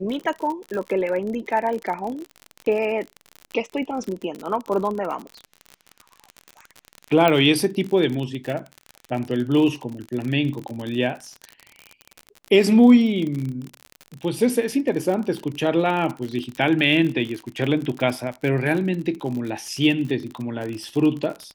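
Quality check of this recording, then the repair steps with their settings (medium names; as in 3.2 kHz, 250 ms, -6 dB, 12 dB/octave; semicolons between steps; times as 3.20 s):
crackle 48 per s -27 dBFS
7.28 s: pop -6 dBFS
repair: de-click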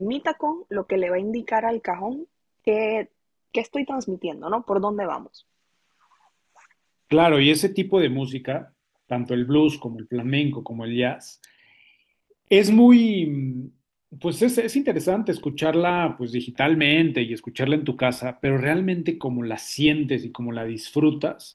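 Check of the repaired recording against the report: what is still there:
7.28 s: pop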